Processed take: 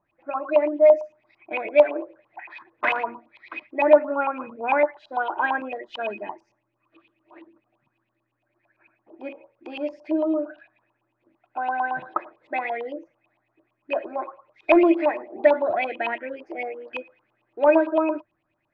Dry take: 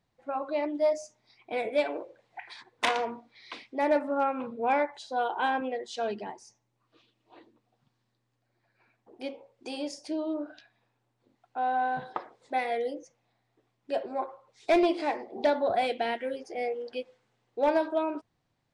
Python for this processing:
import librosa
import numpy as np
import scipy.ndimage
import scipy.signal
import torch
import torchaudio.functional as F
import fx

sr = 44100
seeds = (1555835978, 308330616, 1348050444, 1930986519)

y = fx.small_body(x, sr, hz=(330.0, 600.0, 2500.0), ring_ms=100, db=16)
y = fx.filter_lfo_lowpass(y, sr, shape='saw_up', hz=8.9, low_hz=920.0, high_hz=3000.0, q=7.3)
y = F.gain(torch.from_numpy(y), -3.5).numpy()